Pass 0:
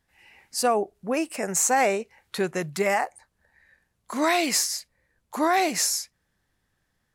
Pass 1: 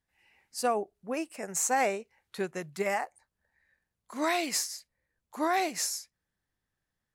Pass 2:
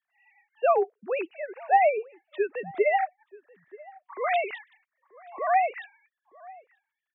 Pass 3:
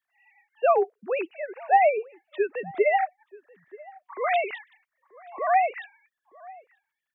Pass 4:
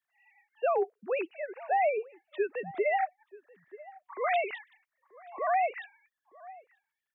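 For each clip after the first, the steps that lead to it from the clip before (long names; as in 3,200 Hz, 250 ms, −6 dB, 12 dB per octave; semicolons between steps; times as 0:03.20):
expander for the loud parts 1.5 to 1, over −32 dBFS; level −5 dB
three sine waves on the formant tracks; slap from a distant wall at 160 metres, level −22 dB; level +5 dB
de-essing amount 85%; level +1.5 dB
brickwall limiter −16.5 dBFS, peak gain reduction 7.5 dB; level −3.5 dB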